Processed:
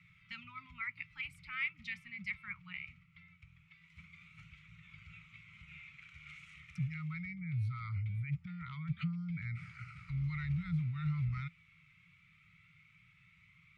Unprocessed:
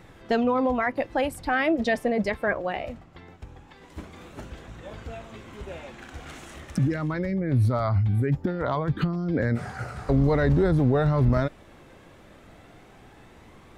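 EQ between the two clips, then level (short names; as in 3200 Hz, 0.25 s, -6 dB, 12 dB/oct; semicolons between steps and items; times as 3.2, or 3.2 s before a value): vowel filter u; Chebyshev band-stop 170–1300 Hz, order 5; +10.0 dB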